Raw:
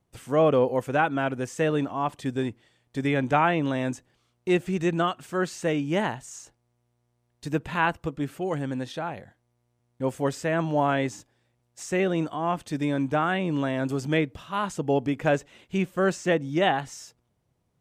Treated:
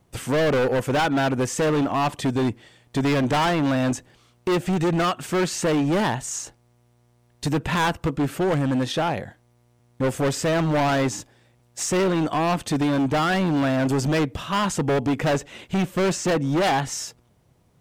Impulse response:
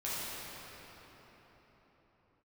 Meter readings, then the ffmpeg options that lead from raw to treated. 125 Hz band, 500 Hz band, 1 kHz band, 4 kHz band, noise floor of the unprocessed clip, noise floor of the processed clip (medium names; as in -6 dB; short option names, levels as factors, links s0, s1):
+5.5 dB, +2.5 dB, +3.0 dB, +7.5 dB, -73 dBFS, -61 dBFS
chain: -filter_complex "[0:a]asplit=2[s0][s1];[s1]acompressor=threshold=0.0316:ratio=6,volume=1[s2];[s0][s2]amix=inputs=2:normalize=0,asoftclip=type=hard:threshold=0.0596,volume=2"